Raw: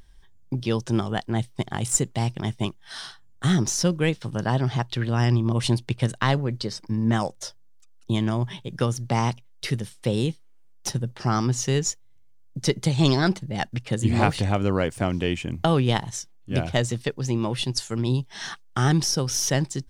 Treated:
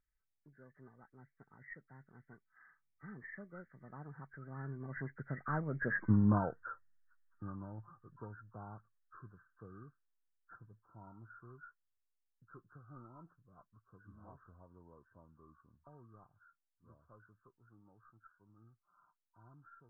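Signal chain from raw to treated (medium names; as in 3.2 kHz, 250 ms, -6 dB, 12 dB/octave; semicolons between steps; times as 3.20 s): knee-point frequency compression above 1 kHz 4:1; Doppler pass-by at 6.08 s, 41 m/s, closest 5 m; trim -1.5 dB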